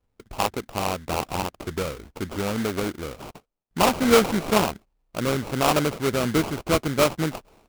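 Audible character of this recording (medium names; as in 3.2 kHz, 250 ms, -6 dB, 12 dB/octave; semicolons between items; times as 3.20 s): aliases and images of a low sample rate 1.8 kHz, jitter 20%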